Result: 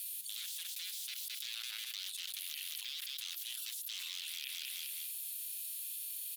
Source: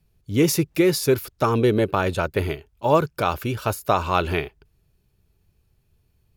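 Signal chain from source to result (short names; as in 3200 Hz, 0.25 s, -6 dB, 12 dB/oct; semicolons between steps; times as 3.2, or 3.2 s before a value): resonant high shelf 7400 Hz +11.5 dB, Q 1.5; limiter -11.5 dBFS, peak gain reduction 10 dB; wavefolder -25.5 dBFS; ladder high-pass 3000 Hz, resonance 50%; feedback echo 0.21 s, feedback 36%, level -21 dB; fast leveller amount 100%; gain -4.5 dB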